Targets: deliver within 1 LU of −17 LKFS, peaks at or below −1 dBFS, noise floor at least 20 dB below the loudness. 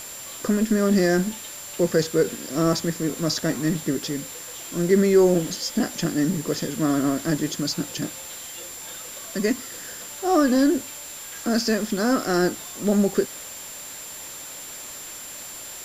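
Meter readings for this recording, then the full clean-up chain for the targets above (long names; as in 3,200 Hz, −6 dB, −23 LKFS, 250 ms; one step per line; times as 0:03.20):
interfering tone 7,300 Hz; level of the tone −38 dBFS; background noise floor −38 dBFS; target noise floor −44 dBFS; integrated loudness −23.5 LKFS; sample peak −6.5 dBFS; target loudness −17.0 LKFS
→ notch filter 7,300 Hz, Q 30
noise reduction from a noise print 6 dB
level +6.5 dB
brickwall limiter −1 dBFS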